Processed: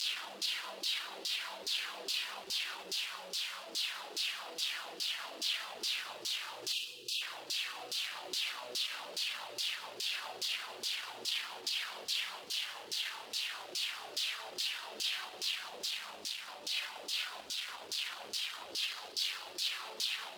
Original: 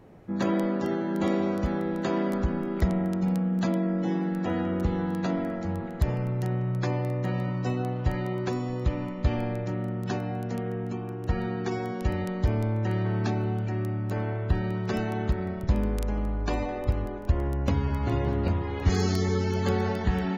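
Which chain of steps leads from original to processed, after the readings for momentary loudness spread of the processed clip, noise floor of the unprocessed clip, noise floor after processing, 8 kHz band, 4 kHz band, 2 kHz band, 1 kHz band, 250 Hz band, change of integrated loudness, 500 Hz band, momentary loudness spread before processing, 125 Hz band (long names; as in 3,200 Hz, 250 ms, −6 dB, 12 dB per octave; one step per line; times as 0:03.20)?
2 LU, −34 dBFS, −50 dBFS, can't be measured, +12.5 dB, −1.0 dB, −12.0 dB, −33.0 dB, −8.0 dB, −21.0 dB, 5 LU, below −40 dB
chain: sign of each sample alone
flat-topped bell 3,600 Hz +10.5 dB 1.1 octaves
four-comb reverb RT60 2.4 s, combs from 26 ms, DRR 2 dB
reverb reduction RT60 0.52 s
bit reduction 5 bits
brickwall limiter −23 dBFS, peak gain reduction 12 dB
spectral tilt +4 dB per octave
auto-filter band-pass saw down 2.4 Hz 350–5,600 Hz
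gain on a spectral selection 0:06.73–0:07.21, 530–2,400 Hz −28 dB
feedback echo with a high-pass in the loop 193 ms, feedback 63%, high-pass 1,100 Hz, level −20.5 dB
level −4 dB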